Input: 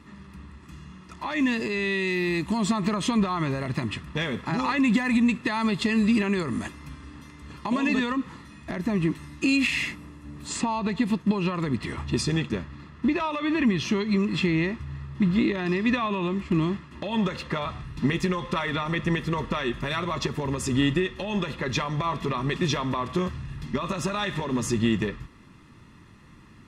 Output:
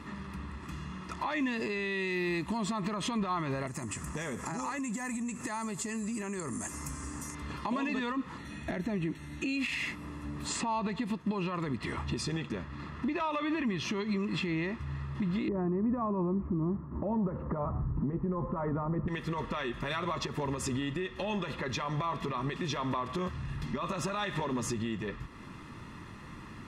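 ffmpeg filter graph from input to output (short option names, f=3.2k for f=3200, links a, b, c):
-filter_complex "[0:a]asettb=1/sr,asplit=3[a][b][c];[a]atrim=end=3.674[d];[b]atrim=start=3.67:end=7.35,asetpts=PTS-STARTPTS,afade=t=in:d=0.004:c=qsin,afade=t=out:st=3.676:d=0.004:c=qsin,highshelf=f=5.2k:t=q:w=3:g=12.5,acompressor=threshold=-34dB:ratio=4:attack=3.2:release=140:knee=1:detection=peak[e];[c]atrim=start=7.346[f];[d][e]acrossfade=d=0.004:c1=hsin:c2=qsin[g];[g][f]acrossfade=d=0.004:c1=qsin:c2=hsin,asettb=1/sr,asplit=3[h][i][j];[h]atrim=end=8.384[k];[i]atrim=start=8.38:end=9.57,asetpts=PTS-STARTPTS,afade=t=in:d=0.004:c=qsin,afade=t=out:st=1.186:d=0.004:c=qsin,acrossover=split=7700[l][m];[m]acompressor=threshold=-59dB:ratio=4:attack=1:release=60[n];[l][n]amix=inputs=2:normalize=0,asuperstop=centerf=4900:order=20:qfactor=7.6,equalizer=f=1.1k:w=3.8:g=-10.5[o];[j]atrim=start=9.566[p];[k][o]acrossfade=d=0.004:c1=hsin:c2=qsin[q];[q][p]acrossfade=d=0.004:c1=qsin:c2=hsin,asettb=1/sr,asplit=3[r][s][t];[r]atrim=end=15.484[u];[s]atrim=start=15.48:end=19.08,asetpts=PTS-STARTPTS,afade=t=in:d=0.004:c=qsin,afade=t=out:st=3.596:d=0.004:c=qsin,lowpass=f=1.2k:w=0.5412,lowpass=f=1.2k:w=1.3066,lowshelf=f=490:g=11.5[v];[t]atrim=start=19.076[w];[u][v]acrossfade=d=0.004:c1=hsin:c2=qsin[x];[x][w]acrossfade=d=0.004:c1=qsin:c2=hsin,equalizer=f=900:w=0.54:g=4.5,acompressor=threshold=-41dB:ratio=2,alimiter=level_in=3.5dB:limit=-24dB:level=0:latency=1:release=86,volume=-3.5dB,volume=3.5dB"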